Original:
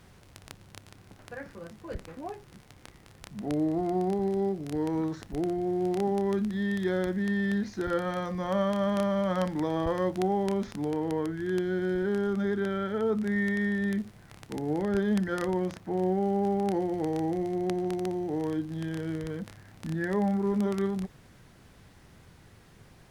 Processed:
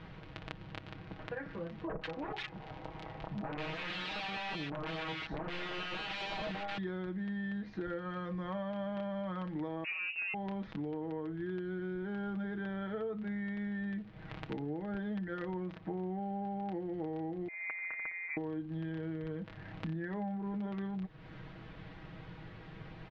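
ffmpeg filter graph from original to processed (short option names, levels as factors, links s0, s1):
-filter_complex "[0:a]asettb=1/sr,asplit=3[s0][s1][s2];[s0]atrim=end=1.874[s3];[s1]atrim=start=1.87:end=6.78,asetpts=PTS-STARTPTS,afade=t=in:d=0.004:c=qsin,afade=t=out:st=4.906:d=0.004:c=qsin,equalizer=f=810:t=o:w=1.3:g=11,aeval=exprs='(mod(22.4*val(0)+1,2)-1)/22.4':c=same,acrossover=split=1400[s4][s5];[s5]adelay=140[s6];[s4][s6]amix=inputs=2:normalize=0,atrim=end_sample=216531[s7];[s2]atrim=start=6.776[s8];[s3][s7]acrossfade=d=0.004:c1=hsin:c2=qsin[s9];[s9][s8]acrossfade=d=0.004:c1=qsin:c2=hsin,asettb=1/sr,asplit=3[s10][s11][s12];[s10]atrim=end=9.844[s13];[s11]atrim=start=9.84:end=10.34,asetpts=PTS-STARTPTS,afade=t=in:d=0.004:c=qsin,afade=t=out:st=0.496:d=0.004:c=qsin,aecho=1:1:5.8:0.36,atrim=end_sample=22050,asoftclip=type=hard:threshold=0.0562,lowpass=f=2500:t=q:w=0.5098,lowpass=f=2500:t=q:w=0.6013,lowpass=f=2500:t=q:w=0.9,lowpass=f=2500:t=q:w=2.563,afreqshift=-2900[s14];[s12]atrim=start=10.336[s15];[s13][s14]acrossfade=d=0.004:c1=hsin:c2=qsin[s16];[s16][s15]acrossfade=d=0.004:c1=qsin:c2=hsin,asettb=1/sr,asplit=3[s17][s18][s19];[s17]atrim=end=17.484[s20];[s18]atrim=start=17.48:end=18.37,asetpts=PTS-STARTPTS,afade=t=in:d=0.004:c=qsin,afade=t=out:st=0.886:d=0.004:c=qsin,highpass=f=560:w=0.5412,highpass=f=560:w=1.3066,adynamicsmooth=sensitivity=4:basefreq=2200,lowpass=f=2400:t=q:w=0.5098,lowpass=f=2400:t=q:w=0.6013,lowpass=f=2400:t=q:w=0.9,lowpass=f=2400:t=q:w=2.563,afreqshift=-2800[s21];[s19]atrim=start=18.366[s22];[s20][s21]acrossfade=d=0.004:c1=hsin:c2=qsin[s23];[s23][s22]acrossfade=d=0.004:c1=qsin:c2=hsin,lowpass=f=3500:w=0.5412,lowpass=f=3500:w=1.3066,aecho=1:1:6.3:0.63,acompressor=threshold=0.00794:ratio=6,volume=1.68"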